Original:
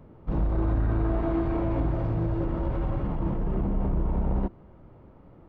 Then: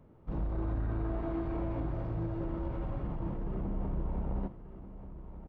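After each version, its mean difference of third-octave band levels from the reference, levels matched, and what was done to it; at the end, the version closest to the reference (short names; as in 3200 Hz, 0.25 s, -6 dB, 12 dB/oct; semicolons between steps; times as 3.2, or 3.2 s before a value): 1.5 dB: echo 1.186 s -12.5 dB; gain -8.5 dB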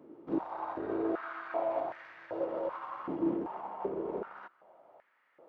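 8.0 dB: stepped high-pass 2.6 Hz 320–1800 Hz; gain -6 dB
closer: first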